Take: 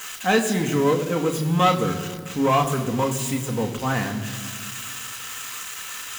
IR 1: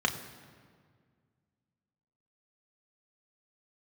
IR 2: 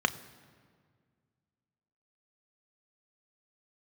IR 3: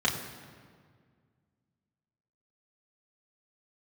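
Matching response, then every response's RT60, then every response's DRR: 1; 1.9, 1.9, 1.9 s; 3.0, 10.0, -3.5 dB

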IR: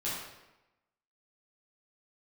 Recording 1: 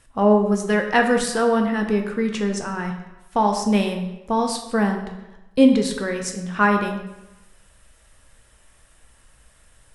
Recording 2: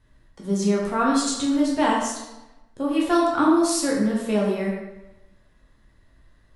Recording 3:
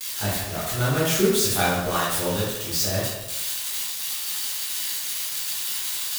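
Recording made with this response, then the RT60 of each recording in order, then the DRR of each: 3; 1.0, 1.0, 1.0 s; 3.5, -4.0, -9.0 dB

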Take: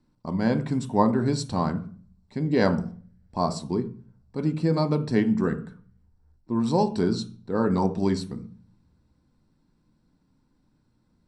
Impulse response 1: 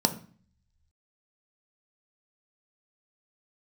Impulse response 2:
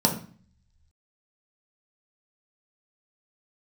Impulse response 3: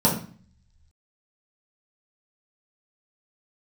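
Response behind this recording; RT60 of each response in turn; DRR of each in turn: 1; 0.45, 0.45, 0.45 s; 6.5, 0.0, -6.0 dB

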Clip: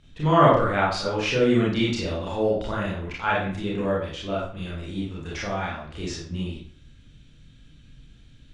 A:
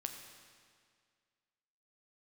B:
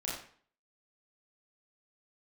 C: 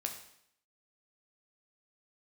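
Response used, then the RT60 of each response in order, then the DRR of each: B; 2.0, 0.50, 0.70 s; 4.5, -6.5, 3.0 dB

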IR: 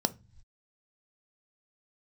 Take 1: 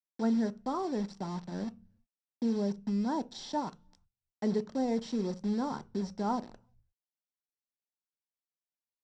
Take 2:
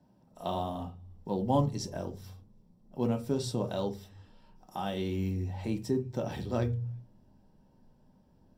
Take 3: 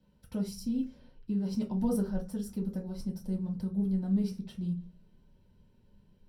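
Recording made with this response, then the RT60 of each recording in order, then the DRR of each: 1; not exponential, not exponential, not exponential; 11.5, 4.0, -3.5 dB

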